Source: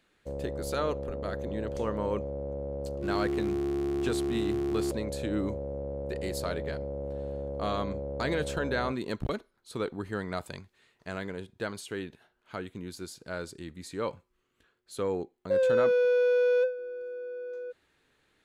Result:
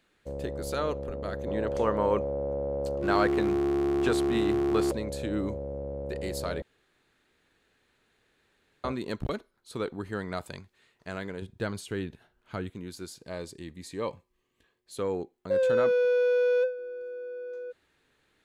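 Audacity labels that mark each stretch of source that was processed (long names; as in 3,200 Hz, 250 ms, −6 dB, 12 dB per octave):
1.470000	4.930000	parametric band 970 Hz +7.5 dB 2.9 octaves
6.620000	8.840000	fill with room tone
11.420000	12.700000	low-shelf EQ 180 Hz +11.5 dB
13.200000	14.990000	Butterworth band-reject 1,400 Hz, Q 4.6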